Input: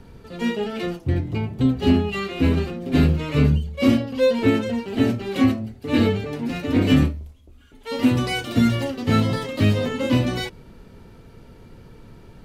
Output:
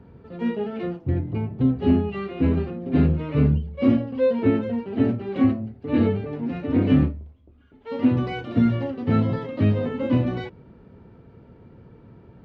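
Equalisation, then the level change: high-pass 75 Hz; tape spacing loss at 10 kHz 41 dB; 0.0 dB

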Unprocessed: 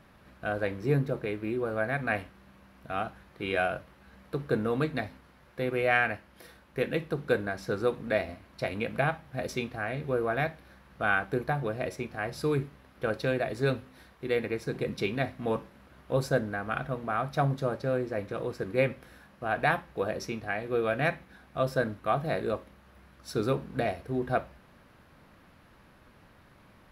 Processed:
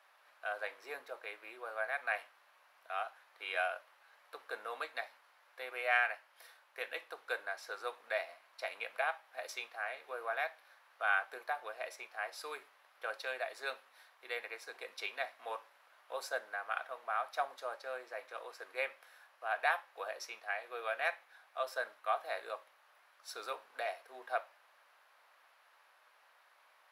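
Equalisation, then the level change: high-pass 680 Hz 24 dB/octave; -4.5 dB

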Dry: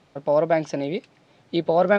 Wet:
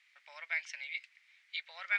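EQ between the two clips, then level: ladder high-pass 1.9 kHz, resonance 70%; tilt EQ +2.5 dB/octave; treble shelf 2.4 kHz -7.5 dB; +3.0 dB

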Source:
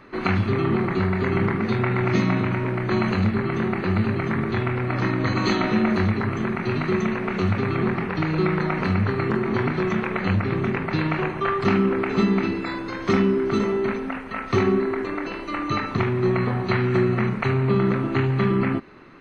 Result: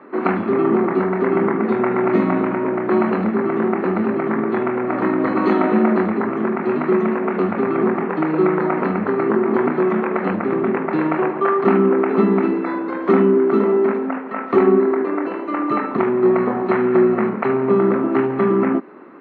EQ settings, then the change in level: high-pass 230 Hz 24 dB/octave; low-pass 1.2 kHz 12 dB/octave; +8.0 dB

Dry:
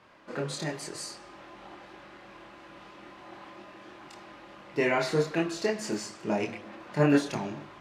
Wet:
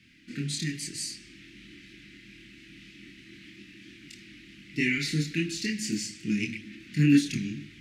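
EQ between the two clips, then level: elliptic band-stop 280–2100 Hz, stop band 80 dB; +5.5 dB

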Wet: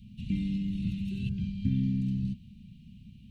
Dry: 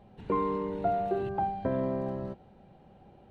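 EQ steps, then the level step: Chebyshev band-stop 230–2600 Hz, order 4; +9.0 dB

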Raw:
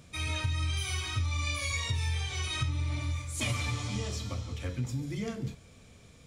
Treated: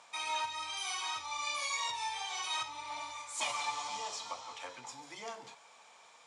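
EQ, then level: low-pass 8.9 kHz 24 dB/octave; dynamic bell 1.7 kHz, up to -6 dB, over -50 dBFS, Q 0.92; resonant high-pass 890 Hz, resonance Q 5.2; 0.0 dB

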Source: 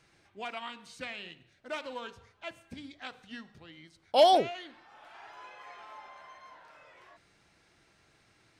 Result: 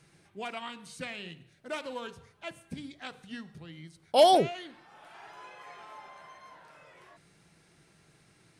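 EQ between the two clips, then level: fifteen-band graphic EQ 160 Hz +12 dB, 400 Hz +4 dB, 10 kHz +11 dB; 0.0 dB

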